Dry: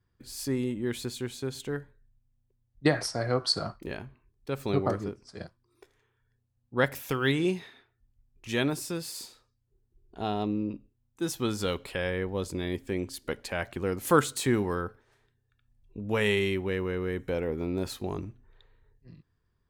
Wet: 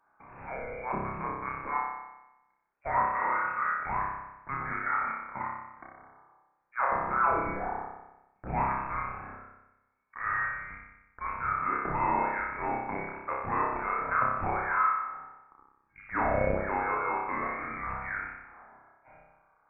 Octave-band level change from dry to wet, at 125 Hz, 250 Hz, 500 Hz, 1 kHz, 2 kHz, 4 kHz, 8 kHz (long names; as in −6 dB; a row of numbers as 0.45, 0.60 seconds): −8.5 dB, −10.5 dB, −6.5 dB, +10.0 dB, +2.5 dB, below −40 dB, below −40 dB